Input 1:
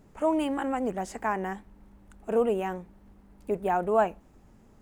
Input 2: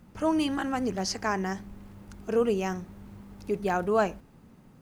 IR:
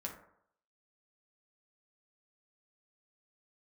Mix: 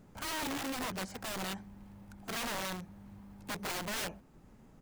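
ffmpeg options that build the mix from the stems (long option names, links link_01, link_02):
-filter_complex "[0:a]acompressor=threshold=-45dB:ratio=1.5,aeval=exprs='(mod(79.4*val(0)+1,2)-1)/79.4':channel_layout=same,volume=-3.5dB[link_01];[1:a]acrossover=split=2700[link_02][link_03];[link_03]acompressor=threshold=-59dB:ratio=4:attack=1:release=60[link_04];[link_02][link_04]amix=inputs=2:normalize=0,highpass=44,aeval=exprs='(mod(17.8*val(0)+1,2)-1)/17.8':channel_layout=same,adelay=1.3,volume=-7.5dB[link_05];[link_01][link_05]amix=inputs=2:normalize=0"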